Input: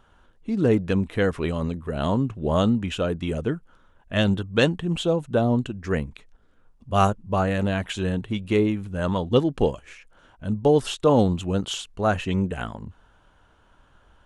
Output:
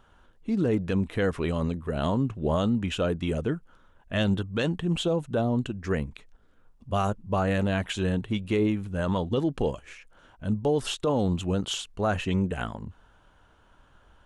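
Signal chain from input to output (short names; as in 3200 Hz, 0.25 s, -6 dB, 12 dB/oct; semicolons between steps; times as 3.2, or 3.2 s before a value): limiter -15.5 dBFS, peak gain reduction 10 dB; gain -1 dB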